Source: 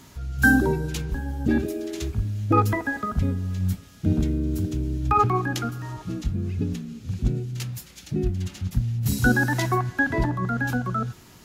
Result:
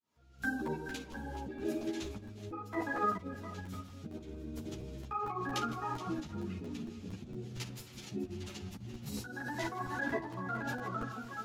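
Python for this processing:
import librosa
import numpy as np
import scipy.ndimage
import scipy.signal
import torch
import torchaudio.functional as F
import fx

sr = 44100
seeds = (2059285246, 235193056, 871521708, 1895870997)

y = fx.fade_in_head(x, sr, length_s=1.47)
y = fx.lowpass(y, sr, hz=2100.0, slope=6)
y = fx.peak_eq(y, sr, hz=1600.0, db=-5.5, octaves=1.2)
y = fx.echo_multitap(y, sr, ms=(40, 48, 57, 157, 424, 706), db=(-17.0, -19.5, -14.0, -15.0, -13.5, -16.0))
y = fx.tremolo_shape(y, sr, shape='saw_up', hz=2.1, depth_pct=40)
y = fx.over_compress(y, sr, threshold_db=-29.0, ratio=-1.0)
y = fx.highpass(y, sr, hz=640.0, slope=6)
y = fx.buffer_crackle(y, sr, first_s=0.43, period_s=0.23, block=128, kind='repeat')
y = fx.ensemble(y, sr)
y = F.gain(torch.from_numpy(y), 3.0).numpy()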